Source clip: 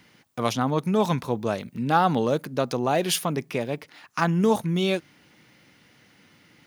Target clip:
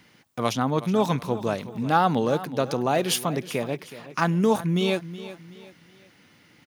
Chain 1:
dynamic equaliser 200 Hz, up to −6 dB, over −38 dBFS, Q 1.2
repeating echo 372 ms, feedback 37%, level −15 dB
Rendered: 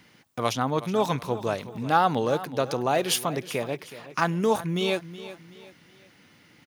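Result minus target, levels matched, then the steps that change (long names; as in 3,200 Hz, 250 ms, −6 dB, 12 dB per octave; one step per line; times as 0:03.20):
250 Hz band −3.0 dB
change: dynamic equaliser 54 Hz, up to −6 dB, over −38 dBFS, Q 1.2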